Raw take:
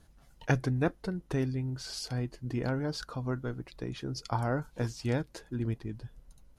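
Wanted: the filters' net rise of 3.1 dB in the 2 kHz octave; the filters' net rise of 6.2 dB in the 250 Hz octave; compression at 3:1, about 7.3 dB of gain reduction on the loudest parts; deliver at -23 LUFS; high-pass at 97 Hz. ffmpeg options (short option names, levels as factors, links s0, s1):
-af "highpass=97,equalizer=f=250:t=o:g=7.5,equalizer=f=2000:t=o:g=4,acompressor=threshold=0.0355:ratio=3,volume=3.98"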